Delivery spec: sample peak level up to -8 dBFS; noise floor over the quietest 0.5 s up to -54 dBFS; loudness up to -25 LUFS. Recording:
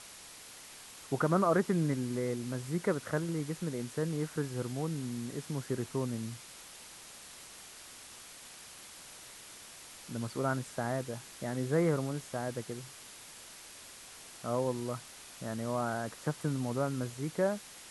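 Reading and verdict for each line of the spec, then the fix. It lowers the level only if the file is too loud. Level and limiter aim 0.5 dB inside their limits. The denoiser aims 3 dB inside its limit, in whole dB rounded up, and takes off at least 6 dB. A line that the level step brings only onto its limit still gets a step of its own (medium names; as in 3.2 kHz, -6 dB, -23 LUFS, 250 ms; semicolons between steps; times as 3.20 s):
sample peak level -16.0 dBFS: pass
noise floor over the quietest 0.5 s -51 dBFS: fail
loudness -34.5 LUFS: pass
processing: noise reduction 6 dB, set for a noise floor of -51 dBFS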